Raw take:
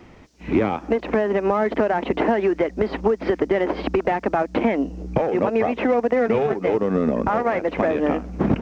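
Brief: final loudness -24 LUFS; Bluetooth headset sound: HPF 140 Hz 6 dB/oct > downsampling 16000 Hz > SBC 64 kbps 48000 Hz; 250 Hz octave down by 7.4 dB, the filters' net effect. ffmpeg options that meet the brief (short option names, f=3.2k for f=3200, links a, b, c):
-af "highpass=f=140:p=1,equalizer=f=250:t=o:g=-8.5,aresample=16000,aresample=44100,volume=0.5dB" -ar 48000 -c:a sbc -b:a 64k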